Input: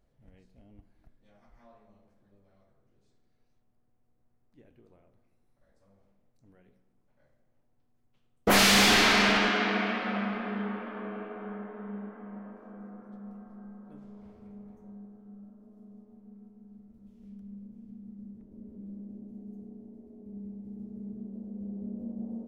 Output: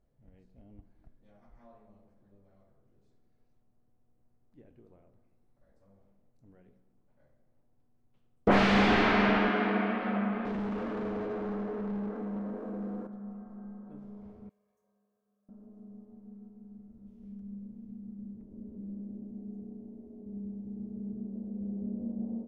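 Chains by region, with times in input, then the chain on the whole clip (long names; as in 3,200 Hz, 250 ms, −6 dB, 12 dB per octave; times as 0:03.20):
0:10.45–0:13.07: mu-law and A-law mismatch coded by mu + hollow resonant body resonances 300/470/4,000 Hz, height 7 dB, ringing for 25 ms + hard clipping −33 dBFS
0:14.49–0:15.49: first difference + comb filter 1.8 ms, depth 79%
whole clip: treble cut that deepens with the level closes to 2,800 Hz, closed at −27 dBFS; tilt shelving filter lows +5 dB, about 1,500 Hz; automatic gain control gain up to 4 dB; level −7 dB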